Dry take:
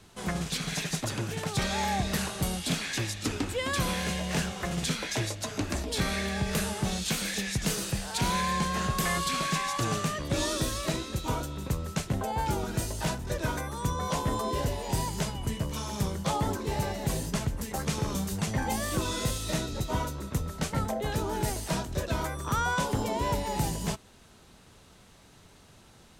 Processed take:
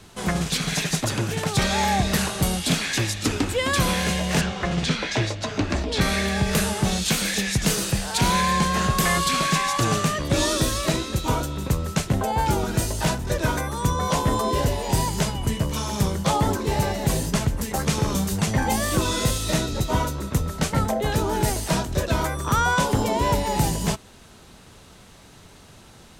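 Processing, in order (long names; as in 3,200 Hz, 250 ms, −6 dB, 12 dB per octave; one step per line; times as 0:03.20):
0:04.41–0:06.01: low-pass filter 4,800 Hz 12 dB per octave
level +7.5 dB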